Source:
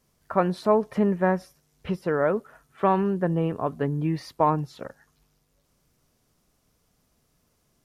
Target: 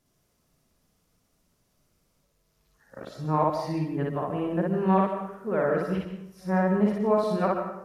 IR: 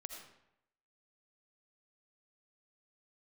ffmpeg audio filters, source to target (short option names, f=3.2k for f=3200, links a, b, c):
-filter_complex "[0:a]areverse,equalizer=f=190:t=o:w=0.22:g=3.5,asplit=2[a][b];[1:a]atrim=start_sample=2205,adelay=58[c];[b][c]afir=irnorm=-1:irlink=0,volume=4.5dB[d];[a][d]amix=inputs=2:normalize=0,volume=-5dB"